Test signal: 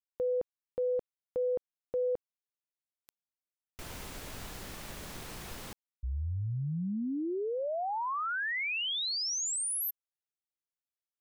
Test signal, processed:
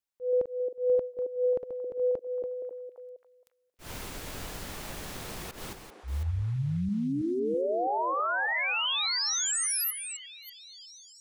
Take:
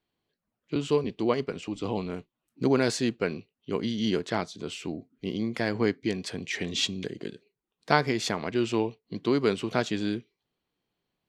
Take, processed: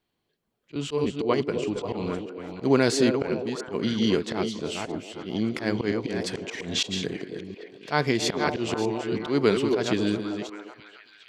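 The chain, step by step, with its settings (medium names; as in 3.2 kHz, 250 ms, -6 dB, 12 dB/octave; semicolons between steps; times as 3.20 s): chunks repeated in reverse 328 ms, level -8.5 dB; slow attack 112 ms; repeats whose band climbs or falls 269 ms, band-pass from 410 Hz, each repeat 0.7 oct, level -5 dB; trim +3.5 dB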